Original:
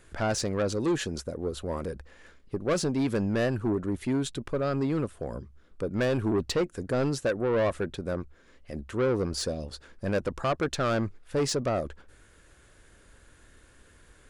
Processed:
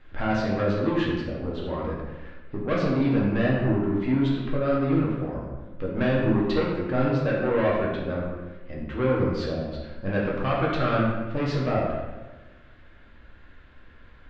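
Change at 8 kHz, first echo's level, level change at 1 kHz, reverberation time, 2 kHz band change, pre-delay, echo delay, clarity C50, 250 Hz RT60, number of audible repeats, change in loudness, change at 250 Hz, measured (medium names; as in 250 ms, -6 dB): under -15 dB, no echo, +4.5 dB, 1.3 s, +4.5 dB, 4 ms, no echo, 1.0 dB, 1.4 s, no echo, +3.5 dB, +5.0 dB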